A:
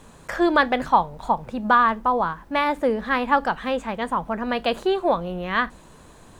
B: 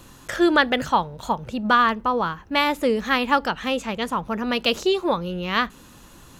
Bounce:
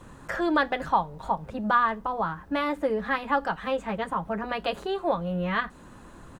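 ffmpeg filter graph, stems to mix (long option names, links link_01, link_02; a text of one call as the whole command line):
ffmpeg -i stem1.wav -i stem2.wav -filter_complex "[0:a]bandreject=frequency=2300:width=18,volume=-6dB,asplit=2[link_01][link_02];[1:a]lowpass=frequency=2000:width=0.5412,lowpass=frequency=2000:width=1.3066,volume=-1,adelay=7.9,volume=0dB[link_03];[link_02]apad=whole_len=282157[link_04];[link_03][link_04]sidechaincompress=threshold=-33dB:ratio=8:attack=16:release=282[link_05];[link_01][link_05]amix=inputs=2:normalize=0" out.wav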